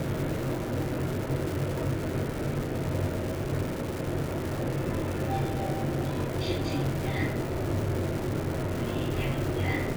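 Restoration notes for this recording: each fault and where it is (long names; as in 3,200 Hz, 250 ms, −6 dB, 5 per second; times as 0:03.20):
surface crackle 500 per second −32 dBFS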